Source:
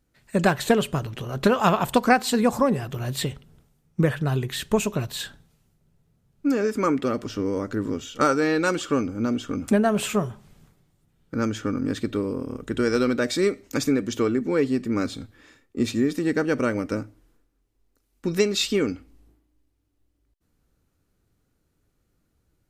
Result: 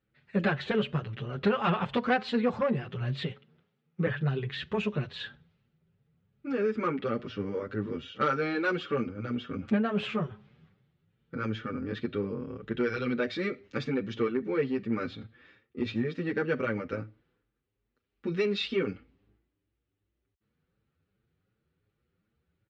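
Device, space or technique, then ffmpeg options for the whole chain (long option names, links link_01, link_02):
barber-pole flanger into a guitar amplifier: -filter_complex "[0:a]asettb=1/sr,asplit=3[link_01][link_02][link_03];[link_01]atrim=end=3.314[link_04];[link_02]atrim=start=3.31:end=4.07,asetpts=PTS-STARTPTS,afade=type=in:duration=0.004:curve=qsin,afade=type=out:start_time=0.756:duration=0.004:curve=qsin,highpass=200[link_05];[link_03]atrim=start=4.066[link_06];[link_04][link_05]acrossfade=duration=0.004:curve1=hsin:curve2=qsin[link_07];[link_07][link_06]acrossfade=duration=0.004:curve1=qsin:curve2=hsin,asplit=2[link_08][link_09];[link_09]adelay=7.3,afreqshift=2.7[link_10];[link_08][link_10]amix=inputs=2:normalize=1,asoftclip=type=tanh:threshold=-15dB,highpass=90,equalizer=frequency=290:width_type=q:width=4:gain=-9,equalizer=frequency=670:width_type=q:width=4:gain=-7,equalizer=frequency=970:width_type=q:width=4:gain=-6,lowpass=frequency=3500:width=0.5412,lowpass=frequency=3500:width=1.3066"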